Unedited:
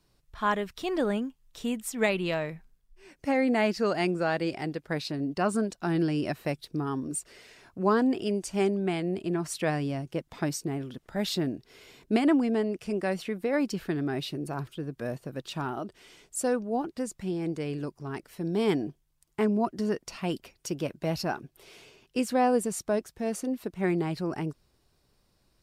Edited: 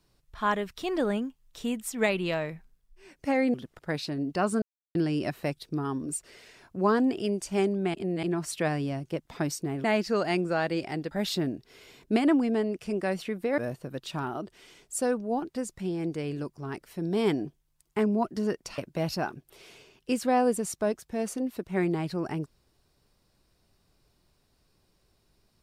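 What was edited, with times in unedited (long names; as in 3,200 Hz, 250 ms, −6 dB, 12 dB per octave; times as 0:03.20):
0:03.54–0:04.81: swap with 0:10.86–0:11.11
0:05.64–0:05.97: silence
0:08.96–0:09.25: reverse
0:13.58–0:15.00: remove
0:20.20–0:20.85: remove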